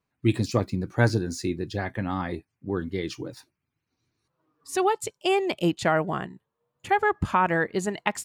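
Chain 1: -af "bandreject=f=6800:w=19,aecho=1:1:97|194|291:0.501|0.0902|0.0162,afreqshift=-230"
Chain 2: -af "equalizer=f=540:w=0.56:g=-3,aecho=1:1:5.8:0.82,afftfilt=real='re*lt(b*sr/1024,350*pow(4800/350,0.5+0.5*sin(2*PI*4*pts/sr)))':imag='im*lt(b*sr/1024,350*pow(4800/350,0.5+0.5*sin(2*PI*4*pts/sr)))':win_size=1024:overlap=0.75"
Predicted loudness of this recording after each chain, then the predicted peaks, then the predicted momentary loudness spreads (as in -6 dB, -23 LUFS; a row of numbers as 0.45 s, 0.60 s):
-26.0 LUFS, -27.5 LUFS; -7.5 dBFS, -7.0 dBFS; 10 LU, 10 LU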